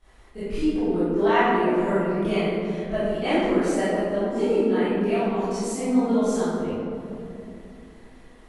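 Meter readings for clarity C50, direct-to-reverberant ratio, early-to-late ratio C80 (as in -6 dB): -6.0 dB, -18.5 dB, -2.0 dB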